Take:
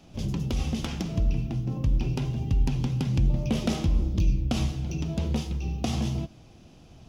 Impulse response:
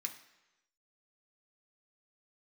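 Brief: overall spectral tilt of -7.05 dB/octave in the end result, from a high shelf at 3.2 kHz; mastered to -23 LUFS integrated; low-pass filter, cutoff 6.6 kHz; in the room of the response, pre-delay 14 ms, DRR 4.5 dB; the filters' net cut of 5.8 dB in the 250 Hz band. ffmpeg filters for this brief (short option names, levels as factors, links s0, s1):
-filter_complex "[0:a]lowpass=6600,equalizer=f=250:t=o:g=-8.5,highshelf=f=3200:g=-8,asplit=2[s0][s1];[1:a]atrim=start_sample=2205,adelay=14[s2];[s1][s2]afir=irnorm=-1:irlink=0,volume=0.708[s3];[s0][s3]amix=inputs=2:normalize=0,volume=2.11"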